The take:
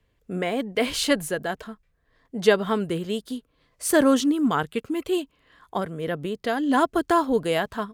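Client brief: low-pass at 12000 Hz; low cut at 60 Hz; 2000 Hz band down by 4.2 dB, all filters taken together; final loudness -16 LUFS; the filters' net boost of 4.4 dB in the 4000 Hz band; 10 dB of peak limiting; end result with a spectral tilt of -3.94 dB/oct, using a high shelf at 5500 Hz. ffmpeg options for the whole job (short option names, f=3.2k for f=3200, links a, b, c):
-af "highpass=60,lowpass=12k,equalizer=f=2k:t=o:g=-7.5,equalizer=f=4k:t=o:g=7,highshelf=f=5.5k:g=3.5,volume=10.5dB,alimiter=limit=-4.5dB:level=0:latency=1"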